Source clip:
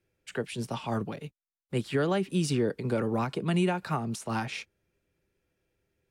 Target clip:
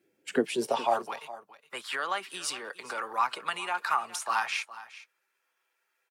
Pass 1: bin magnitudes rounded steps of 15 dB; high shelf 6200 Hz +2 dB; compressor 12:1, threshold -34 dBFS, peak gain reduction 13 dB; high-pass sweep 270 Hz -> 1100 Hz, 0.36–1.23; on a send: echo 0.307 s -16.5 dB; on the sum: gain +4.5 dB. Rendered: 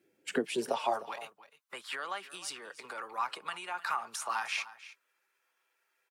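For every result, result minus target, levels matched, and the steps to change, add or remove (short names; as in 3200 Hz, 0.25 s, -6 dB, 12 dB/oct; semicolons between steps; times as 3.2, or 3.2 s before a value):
compressor: peak gain reduction +7 dB; echo 0.108 s early
change: compressor 12:1, threshold -26.5 dBFS, peak gain reduction 6 dB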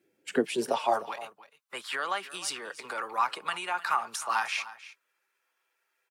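echo 0.108 s early
change: echo 0.415 s -16.5 dB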